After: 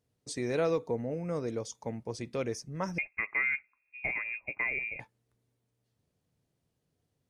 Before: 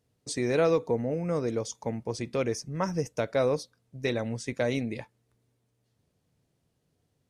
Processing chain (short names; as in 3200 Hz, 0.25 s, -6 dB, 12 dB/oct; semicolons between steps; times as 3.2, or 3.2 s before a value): 2.98–5 inverted band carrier 2600 Hz; gain -5 dB